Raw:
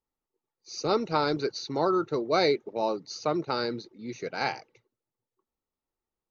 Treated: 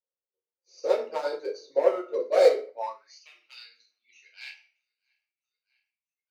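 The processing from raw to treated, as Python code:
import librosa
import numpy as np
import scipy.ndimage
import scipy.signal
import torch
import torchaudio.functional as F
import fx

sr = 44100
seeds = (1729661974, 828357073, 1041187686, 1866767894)

y = fx.echo_feedback(x, sr, ms=644, feedback_pct=46, wet_db=-21.5)
y = fx.dereverb_blind(y, sr, rt60_s=2.0)
y = np.clip(y, -10.0 ** (-21.5 / 20.0), 10.0 ** (-21.5 / 20.0))
y = fx.graphic_eq_31(y, sr, hz=(800, 1250, 4000), db=(-7, -6, -5))
y = fx.room_shoebox(y, sr, seeds[0], volume_m3=71.0, walls='mixed', distance_m=0.96)
y = fx.filter_sweep_highpass(y, sr, from_hz=540.0, to_hz=2800.0, start_s=2.69, end_s=3.23, q=4.5)
y = scipy.signal.sosfilt(scipy.signal.butter(2, 180.0, 'highpass', fs=sr, output='sos'), y)
y = fx.upward_expand(y, sr, threshold_db=-37.0, expansion=1.5)
y = F.gain(torch.from_numpy(y), -3.0).numpy()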